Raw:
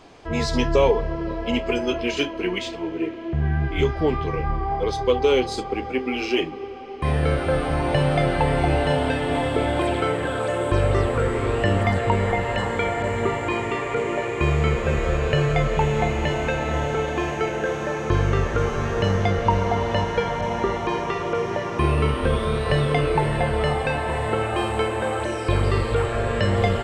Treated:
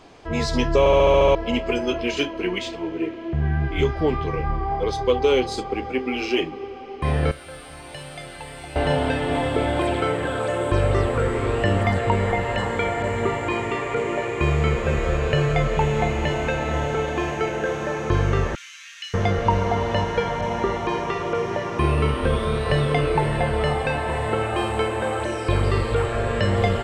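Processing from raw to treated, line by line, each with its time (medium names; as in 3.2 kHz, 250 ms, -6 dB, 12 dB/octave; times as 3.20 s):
0.79 s: stutter in place 0.07 s, 8 plays
7.31–8.76 s: pre-emphasis filter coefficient 0.9
18.55–19.14 s: inverse Chebyshev high-pass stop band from 680 Hz, stop band 60 dB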